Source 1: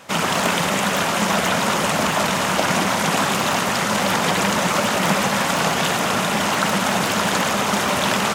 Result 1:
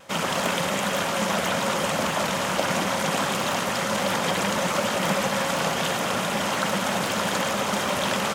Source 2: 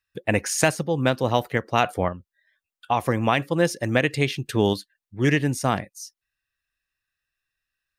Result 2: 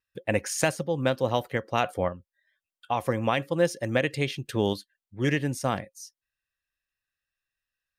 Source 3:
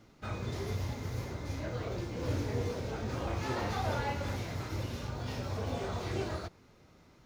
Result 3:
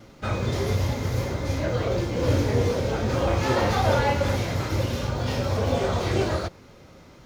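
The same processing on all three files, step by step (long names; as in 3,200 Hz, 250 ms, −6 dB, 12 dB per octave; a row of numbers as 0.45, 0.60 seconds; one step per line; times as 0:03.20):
hollow resonant body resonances 540/3,200 Hz, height 8 dB, ringing for 70 ms
pitch vibrato 0.31 Hz 5.2 cents
normalise the peak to −9 dBFS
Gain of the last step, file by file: −6.0, −5.0, +11.0 decibels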